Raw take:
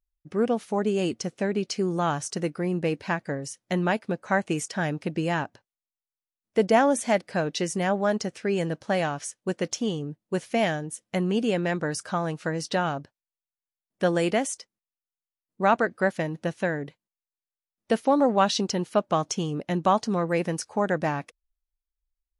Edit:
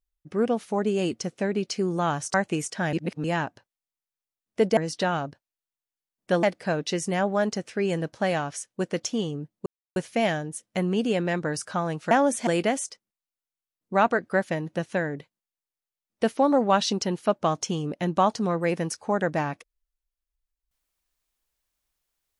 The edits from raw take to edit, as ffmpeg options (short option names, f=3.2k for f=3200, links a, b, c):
-filter_complex "[0:a]asplit=9[a][b][c][d][e][f][g][h][i];[a]atrim=end=2.342[j];[b]atrim=start=4.318:end=4.912[k];[c]atrim=start=4.908:end=5.222,asetpts=PTS-STARTPTS,areverse[l];[d]atrim=start=5.218:end=6.752[m];[e]atrim=start=12.488:end=14.152[n];[f]atrim=start=7.108:end=10.34,asetpts=PTS-STARTPTS,afade=t=out:st=3.228:d=0.004:c=hsin,apad=pad_dur=0.3[o];[g]atrim=start=10.34:end=12.492,asetpts=PTS-STARTPTS,afade=t=in:d=0.004:c=hsin[p];[h]atrim=start=6.748:end=7.112[q];[i]atrim=start=14.148[r];[j][k]acrossfade=d=0.004:c1=hsin:c2=hsin[s];[s][l]acrossfade=d=0.004:c1=hsin:c2=hsin[t];[t][m]acrossfade=d=0.004:c1=hsin:c2=hsin[u];[u][n]acrossfade=d=0.004:c1=hsin:c2=hsin[v];[o][p]concat=n=2:v=0:a=1[w];[v][w]acrossfade=d=0.004:c1=hsin:c2=hsin[x];[x][q]acrossfade=d=0.004:c1=hsin:c2=hsin[y];[y][r]acrossfade=d=0.004:c1=hsin:c2=hsin"